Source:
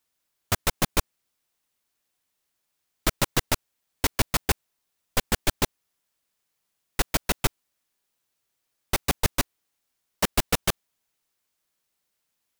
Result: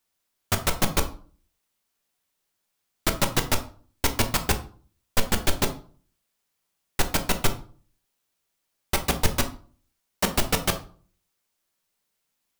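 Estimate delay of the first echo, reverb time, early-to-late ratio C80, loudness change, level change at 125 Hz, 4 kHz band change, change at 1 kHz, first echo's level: none, 0.45 s, 18.0 dB, +0.5 dB, +1.0 dB, +0.5 dB, +1.5 dB, none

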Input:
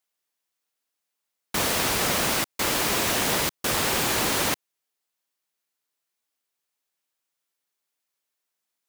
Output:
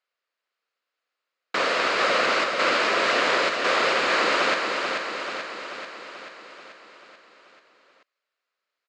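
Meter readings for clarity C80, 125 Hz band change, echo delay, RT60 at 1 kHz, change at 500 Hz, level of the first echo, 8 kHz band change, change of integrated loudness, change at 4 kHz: none, -13.5 dB, 0.436 s, none, +6.0 dB, -5.0 dB, -12.0 dB, +1.0 dB, +1.0 dB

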